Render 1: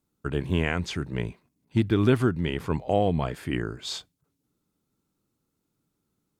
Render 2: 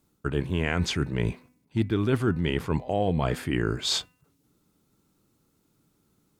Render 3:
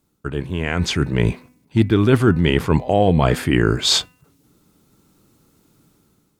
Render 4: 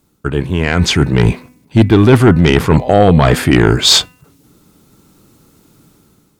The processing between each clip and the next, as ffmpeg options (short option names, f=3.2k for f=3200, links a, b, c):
-af "areverse,acompressor=threshold=-31dB:ratio=5,areverse,bandreject=f=250.6:t=h:w=4,bandreject=f=501.2:t=h:w=4,bandreject=f=751.8:t=h:w=4,bandreject=f=1.0024k:t=h:w=4,bandreject=f=1.253k:t=h:w=4,bandreject=f=1.5036k:t=h:w=4,bandreject=f=1.7542k:t=h:w=4,bandreject=f=2.0048k:t=h:w=4,bandreject=f=2.2554k:t=h:w=4,bandreject=f=2.506k:t=h:w=4,bandreject=f=2.7566k:t=h:w=4,volume=9dB"
-af "dynaudnorm=f=590:g=3:m=10dB,volume=1.5dB"
-af "aeval=exprs='0.891*sin(PI/2*1.78*val(0)/0.891)':c=same"